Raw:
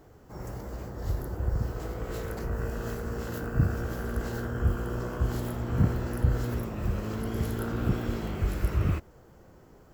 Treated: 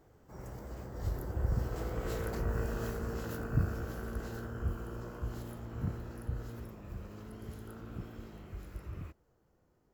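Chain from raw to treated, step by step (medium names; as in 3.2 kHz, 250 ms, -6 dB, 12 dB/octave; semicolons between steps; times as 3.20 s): Doppler pass-by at 2.23 s, 10 m/s, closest 11 m; trim -1.5 dB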